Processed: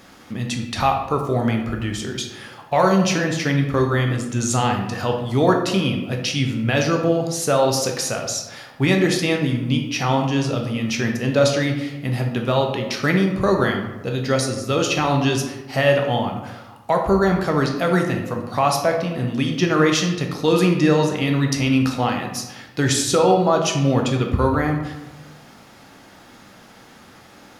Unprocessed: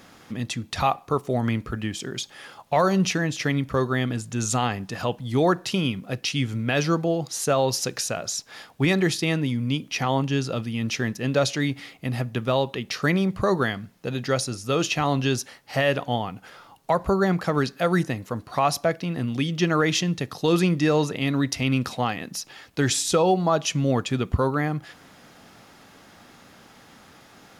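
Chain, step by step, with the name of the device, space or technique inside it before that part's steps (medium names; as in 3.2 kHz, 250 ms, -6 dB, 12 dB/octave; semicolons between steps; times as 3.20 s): bathroom (reverberation RT60 1.1 s, pre-delay 10 ms, DRR 2 dB); trim +2 dB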